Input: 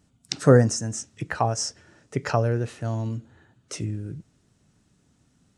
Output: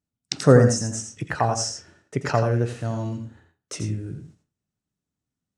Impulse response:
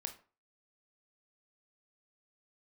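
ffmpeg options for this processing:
-filter_complex "[0:a]agate=range=-24dB:threshold=-53dB:ratio=16:detection=peak,asplit=2[a][b];[1:a]atrim=start_sample=2205,asetrate=52920,aresample=44100,adelay=84[c];[b][c]afir=irnorm=-1:irlink=0,volume=-2.5dB[d];[a][d]amix=inputs=2:normalize=0,volume=1dB"

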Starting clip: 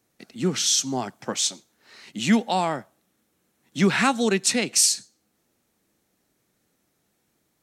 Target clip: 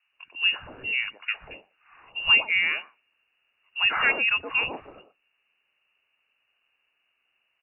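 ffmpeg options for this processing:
-filter_complex "[0:a]asettb=1/sr,asplit=3[a][b][c];[a]atrim=end=3.794[d];[b]atrim=start=3.79:end=4.5,asetpts=PTS-STARTPTS,afade=t=in:d=0.004:c=qsin,afade=t=out:st=0.706:d=0.004:c=qsin,equalizer=f=140:t=o:w=1.1:g=-10[e];[c]atrim=start=4.496[f];[d][e]acrossfade=d=0.004:c1=hsin:c2=qsin[g];[g][f]acrossfade=d=0.004:c1=qsin:c2=hsin,lowpass=f=2.6k:t=q:w=0.5098,lowpass=f=2.6k:t=q:w=0.6013,lowpass=f=2.6k:t=q:w=0.9,lowpass=f=2.6k:t=q:w=2.563,afreqshift=-3000,acrossover=split=180|850[h][i][j];[h]adelay=50[k];[i]adelay=120[l];[k][l][j]amix=inputs=3:normalize=0"

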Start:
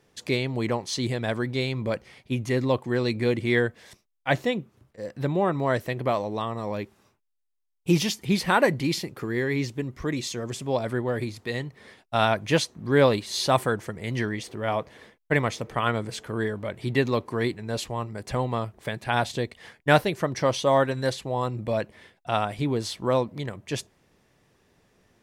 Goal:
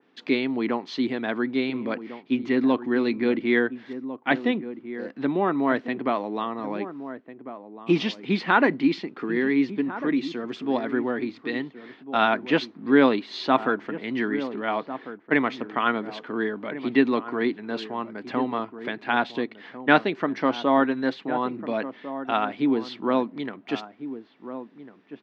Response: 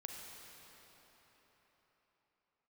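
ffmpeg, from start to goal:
-filter_complex "[0:a]highpass=f=210:w=0.5412,highpass=f=210:w=1.3066,equalizer=f=270:t=q:w=4:g=8,equalizer=f=550:t=q:w=4:g=-7,equalizer=f=1.4k:t=q:w=4:g=3,lowpass=f=3.8k:w=0.5412,lowpass=f=3.8k:w=1.3066,asplit=2[a][b];[b]adelay=1399,volume=-12dB,highshelf=f=4k:g=-31.5[c];[a][c]amix=inputs=2:normalize=0,adynamicequalizer=threshold=0.01:dfrequency=2400:dqfactor=0.7:tfrequency=2400:tqfactor=0.7:attack=5:release=100:ratio=0.375:range=2:mode=cutabove:tftype=highshelf,volume=1.5dB"

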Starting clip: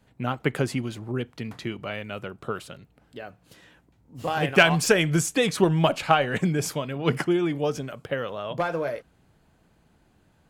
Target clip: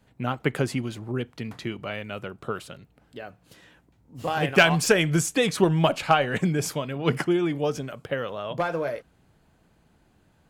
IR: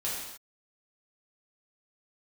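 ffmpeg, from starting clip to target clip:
-af "asoftclip=type=hard:threshold=-7dB"

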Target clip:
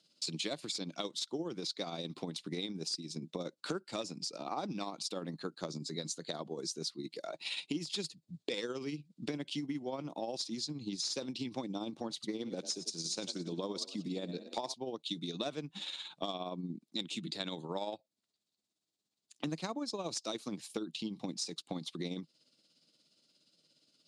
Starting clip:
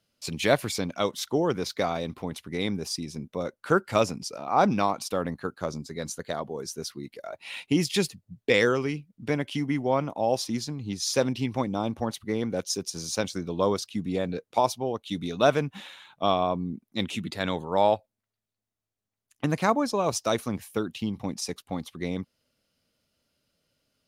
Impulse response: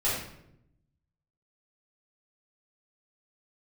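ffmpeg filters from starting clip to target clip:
-filter_complex "[0:a]highshelf=f=2.7k:t=q:w=1.5:g=11,asoftclip=type=hard:threshold=-11.5dB,highpass=f=150:w=0.5412,highpass=f=150:w=1.3066,equalizer=f=160:t=q:w=4:g=5,equalizer=f=320:t=q:w=4:g=8,equalizer=f=3.1k:t=q:w=4:g=-4,equalizer=f=5.9k:t=q:w=4:g=-7,lowpass=f=7.8k:w=0.5412,lowpass=f=7.8k:w=1.3066,asettb=1/sr,asplit=3[a][b][c];[a]atrim=end=12.134[d];[b]atrim=start=12.13:end=14.74,asetpts=PTS-STARTPTS,afade=t=in:d=0.004:c=qsin,afade=t=out:st=2.606:d=0.004:c=qsin,asplit=5[e][f][g][h][i];[f]adelay=92,afreqshift=33,volume=-14dB[j];[g]adelay=184,afreqshift=66,volume=-22.4dB[k];[h]adelay=276,afreqshift=99,volume=-30.8dB[l];[i]adelay=368,afreqshift=132,volume=-39.2dB[m];[e][j][k][l][m]amix=inputs=5:normalize=0,atrim=end_sample=115101[n];[c]atrim=start=14.736[o];[d][n]acrossfade=d=0.004:c1=hsin:c2=qsin[p];[p][o]acrossfade=d=0.004:c1=qsin:c2=hsin,tremolo=f=17:d=0.49,acompressor=threshold=-36dB:ratio=6"

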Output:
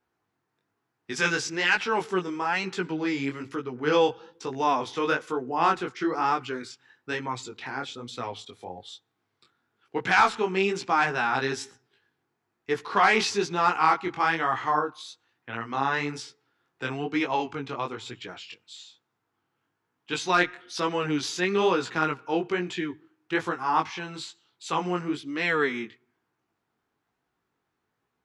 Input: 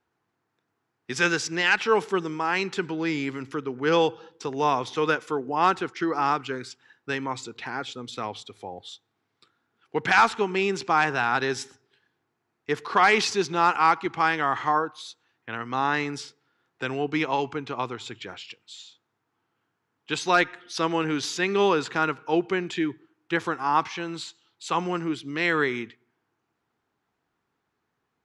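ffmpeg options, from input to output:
-af "flanger=delay=16:depth=6.6:speed=1.1,volume=1.5dB"

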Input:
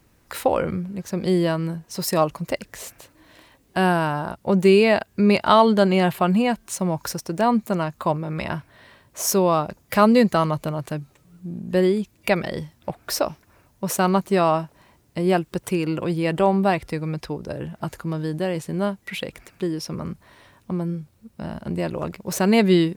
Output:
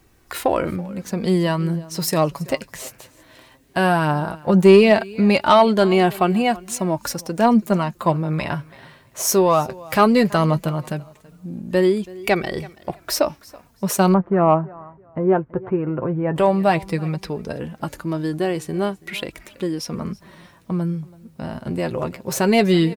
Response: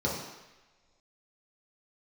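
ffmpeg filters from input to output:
-filter_complex "[0:a]aecho=1:1:329|658:0.0794|0.0167,flanger=delay=2.6:depth=5.3:regen=47:speed=0.16:shape=sinusoidal,asettb=1/sr,asplit=3[a][b][c];[a]atrim=end=14.144[d];[b]atrim=start=14.14:end=16.36,asetpts=PTS-STARTPTS,afade=t=in:d=0.004:c=qsin,afade=t=out:st=2.216:d=0.004:c=qsin,lowpass=f=1.5k:w=0.5412,lowpass=f=1.5k:w=1.3066[e];[c]atrim=start=16.356[f];[d][e]acrossfade=d=0.004:c1=hsin:c2=qsin[g];[g][f]acrossfade=d=0.004:c1=qsin:c2=hsin,acontrast=71"

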